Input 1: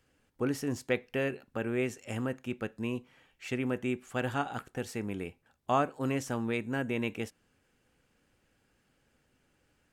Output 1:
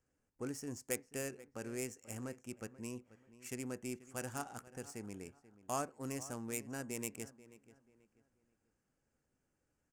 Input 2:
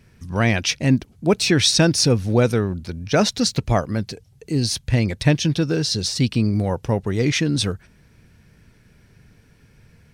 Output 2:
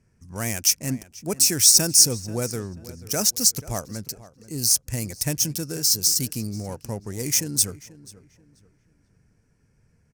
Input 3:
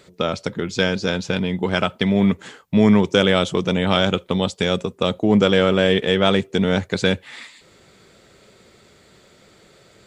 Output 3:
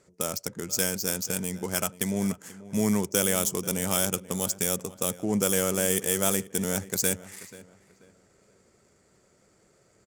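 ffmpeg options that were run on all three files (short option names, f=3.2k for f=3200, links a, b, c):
-filter_complex "[0:a]adynamicsmooth=sensitivity=7.5:basefreq=2.2k,asplit=2[a][b];[b]adelay=486,lowpass=f=2.7k:p=1,volume=-17dB,asplit=2[c][d];[d]adelay=486,lowpass=f=2.7k:p=1,volume=0.32,asplit=2[e][f];[f]adelay=486,lowpass=f=2.7k:p=1,volume=0.32[g];[a][c][e][g]amix=inputs=4:normalize=0,aexciter=amount=15.1:drive=7.4:freq=5.7k,volume=-11dB"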